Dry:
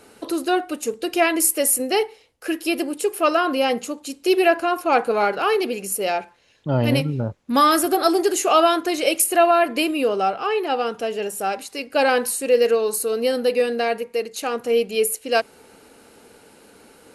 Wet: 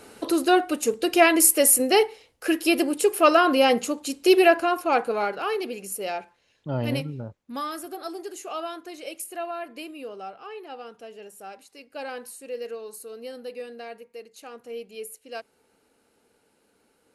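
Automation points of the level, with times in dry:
0:04.27 +1.5 dB
0:05.38 −7.5 dB
0:06.94 −7.5 dB
0:07.74 −17 dB

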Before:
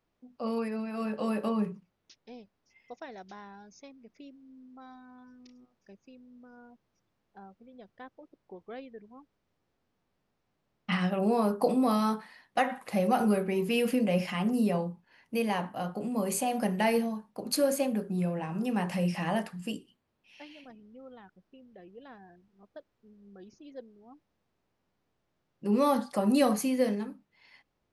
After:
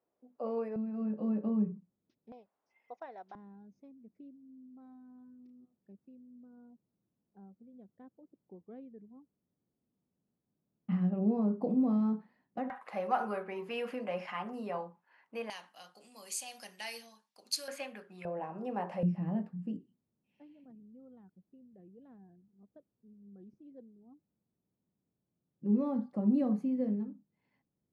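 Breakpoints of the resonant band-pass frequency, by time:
resonant band-pass, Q 1.3
530 Hz
from 0:00.76 210 Hz
from 0:02.32 810 Hz
from 0:03.35 200 Hz
from 0:12.70 1,100 Hz
from 0:15.50 5,300 Hz
from 0:17.68 2,000 Hz
from 0:18.25 650 Hz
from 0:19.03 180 Hz

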